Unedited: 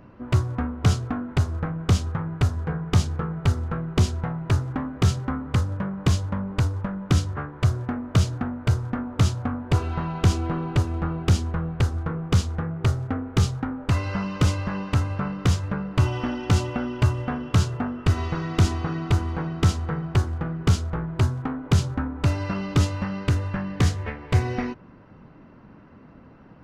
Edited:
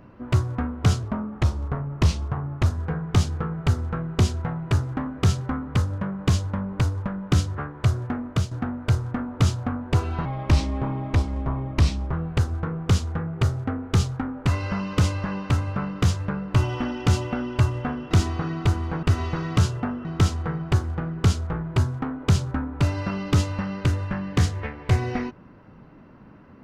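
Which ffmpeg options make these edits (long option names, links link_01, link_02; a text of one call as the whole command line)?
ffmpeg -i in.wav -filter_complex "[0:a]asplit=10[link_01][link_02][link_03][link_04][link_05][link_06][link_07][link_08][link_09][link_10];[link_01]atrim=end=1.034[link_11];[link_02]atrim=start=1.03:end=2.45,asetpts=PTS-STARTPTS,asetrate=38367,aresample=44100,atrim=end_sample=71979,asetpts=PTS-STARTPTS[link_12];[link_03]atrim=start=2.446:end=8.3,asetpts=PTS-STARTPTS,afade=type=out:start_time=5.604:duration=0.25:silence=0.266073[link_13];[link_04]atrim=start=8.3:end=10.044,asetpts=PTS-STARTPTS,afade=type=in:duration=0.004:curve=hsin:silence=0.266073[link_14];[link_05]atrim=start=10.04:end=11.56,asetpts=PTS-STARTPTS,asetrate=35721,aresample=44100[link_15];[link_06]atrim=start=11.556:end=17.542[link_16];[link_07]atrim=start=18.558:end=19.482[link_17];[link_08]atrim=start=18.018:end=18.562[link_18];[link_09]atrim=start=17.538:end=18.022[link_19];[link_10]atrim=start=19.478[link_20];[link_11][link_12]acrossfade=duration=0.004:curve1=hsin:curve2=hsin[link_21];[link_13][link_14]concat=n=2:v=0:a=1[link_22];[link_21][link_22]acrossfade=duration=0.004:curve1=hsin:curve2=hsin[link_23];[link_23][link_15]acrossfade=duration=0.004:curve1=hsin:curve2=hsin[link_24];[link_24][link_16]acrossfade=duration=0.004:curve1=hsin:curve2=hsin[link_25];[link_25][link_17]acrossfade=duration=0.004:curve1=hsin:curve2=hsin[link_26];[link_26][link_18]acrossfade=duration=0.004:curve1=hsin:curve2=hsin[link_27];[link_27][link_19]acrossfade=duration=0.004:curve1=hsin:curve2=hsin[link_28];[link_28][link_20]acrossfade=duration=0.004:curve1=hsin:curve2=hsin" out.wav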